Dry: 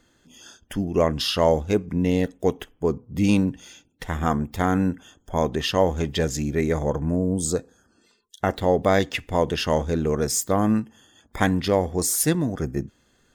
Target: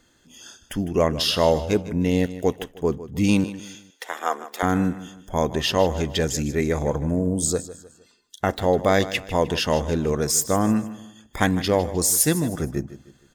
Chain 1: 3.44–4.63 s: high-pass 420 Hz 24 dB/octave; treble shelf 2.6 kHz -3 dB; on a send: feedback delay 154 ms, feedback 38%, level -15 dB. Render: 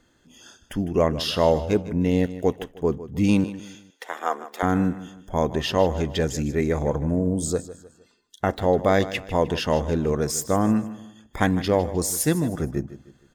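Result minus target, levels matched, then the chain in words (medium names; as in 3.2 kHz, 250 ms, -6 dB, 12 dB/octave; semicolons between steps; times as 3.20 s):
4 kHz band -3.5 dB
3.44–4.63 s: high-pass 420 Hz 24 dB/octave; treble shelf 2.6 kHz +4 dB; on a send: feedback delay 154 ms, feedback 38%, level -15 dB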